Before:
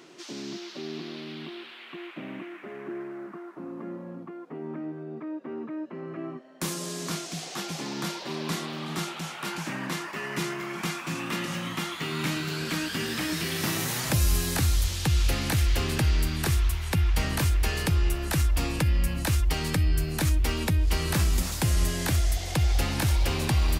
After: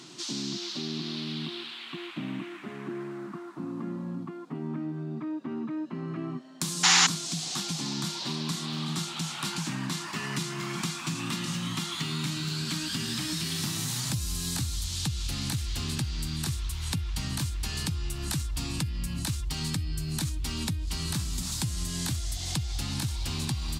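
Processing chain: graphic EQ 125/250/500/1000/2000/4000/8000 Hz +10/+6/-10/+4/-3/+9/+9 dB; compression 6:1, threshold -29 dBFS, peak gain reduction 16 dB; painted sound noise, 6.83–7.07 s, 730–7300 Hz -20 dBFS

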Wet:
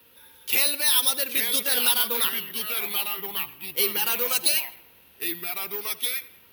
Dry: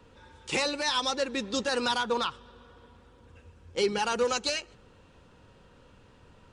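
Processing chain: frequency weighting D; tape echo 78 ms, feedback 50%, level -17 dB, low-pass 4.4 kHz; ever faster or slower copies 727 ms, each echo -3 st, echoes 2, each echo -6 dB; careless resampling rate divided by 3×, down filtered, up zero stuff; trim -5.5 dB

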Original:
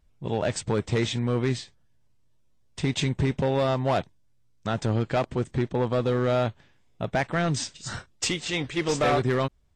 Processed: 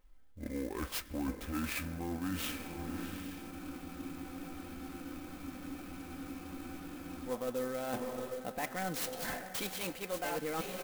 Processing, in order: gliding tape speed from 58% -> 122%; peaking EQ 110 Hz -9.5 dB 1.5 oct; echo that smears into a reverb 755 ms, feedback 50%, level -14 dB; reverse; compression 8:1, threshold -37 dBFS, peak gain reduction 16.5 dB; reverse; comb 3.9 ms, depth 49%; on a send at -20 dB: peaking EQ 1.7 kHz +11 dB 0.7 oct + reverberation, pre-delay 7 ms; on the sum: spectral freeze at 3.54 s, 3.73 s; sampling jitter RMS 0.047 ms; trim +1.5 dB

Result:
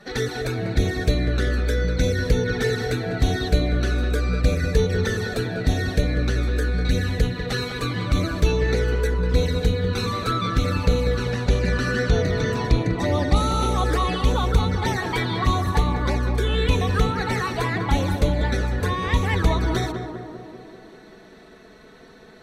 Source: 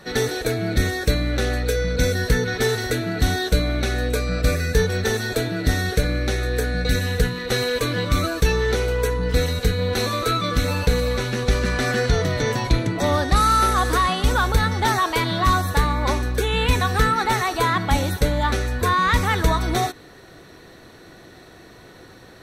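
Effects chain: treble shelf 9.1 kHz -11.5 dB; touch-sensitive flanger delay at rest 5.2 ms, full sweep at -15 dBFS; on a send: tape echo 195 ms, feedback 75%, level -4.5 dB, low-pass 1.3 kHz

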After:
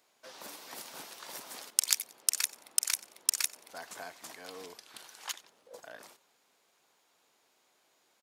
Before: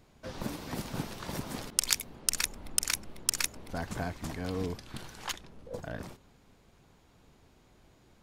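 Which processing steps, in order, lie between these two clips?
high-pass 560 Hz 12 dB/octave; treble shelf 4.1 kHz +8 dB; on a send: feedback delay 91 ms, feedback 36%, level -22 dB; on the sum: trim -5.5 dB

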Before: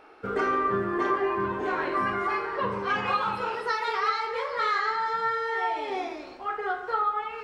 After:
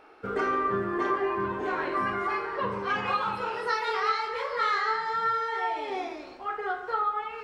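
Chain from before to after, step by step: 3.53–5.59 s: doubling 25 ms -4 dB; trim -1.5 dB

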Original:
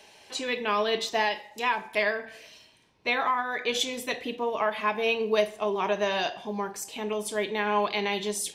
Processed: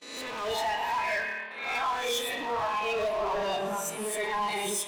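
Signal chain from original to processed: reverse spectral sustain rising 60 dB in 1.54 s; dynamic bell 920 Hz, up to +5 dB, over -38 dBFS, Q 2.6; gate with hold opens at -29 dBFS; harmonic-percussive split harmonic -4 dB; on a send: two-band feedback delay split 510 Hz, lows 95 ms, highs 202 ms, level -15 dB; on the sum: spring tank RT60 3.2 s, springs 46 ms, chirp 35 ms, DRR 3.5 dB; in parallel at -6 dB: saturation -24 dBFS, distortion -10 dB; on the sum: time stretch by phase-locked vocoder 0.57×; overload inside the chain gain 25 dB; spectral noise reduction 9 dB

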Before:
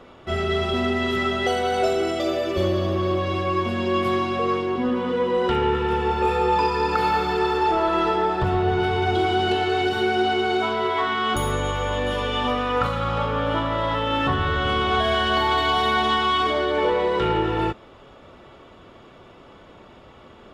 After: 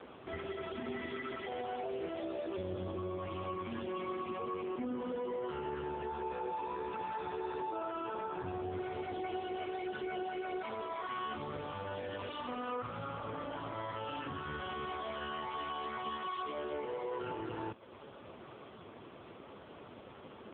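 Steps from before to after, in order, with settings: peak limiter -20.5 dBFS, peak gain reduction 10 dB; compression 2.5:1, threshold -38 dBFS, peak gain reduction 9.5 dB; trim -1 dB; AMR-NB 5.15 kbps 8 kHz

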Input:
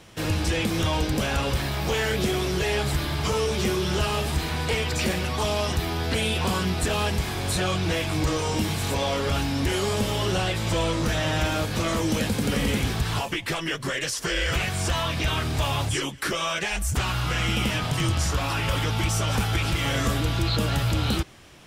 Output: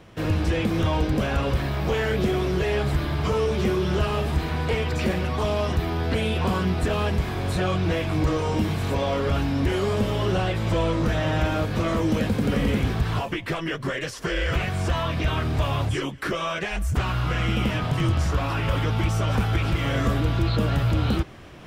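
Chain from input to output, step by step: peaking EQ 9.3 kHz -14 dB 2.7 oct; band-stop 850 Hz, Q 17; reverse; upward compressor, threshold -39 dBFS; reverse; trim +2.5 dB

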